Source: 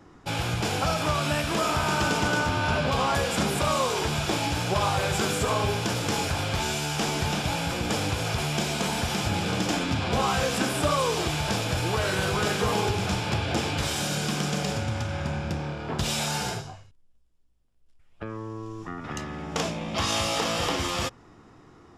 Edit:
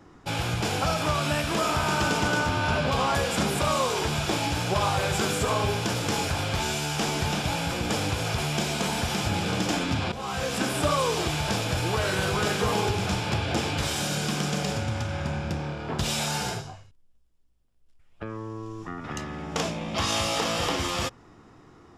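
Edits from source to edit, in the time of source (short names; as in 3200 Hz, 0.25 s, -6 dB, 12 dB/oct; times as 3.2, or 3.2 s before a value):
10.12–10.89 fade in equal-power, from -15.5 dB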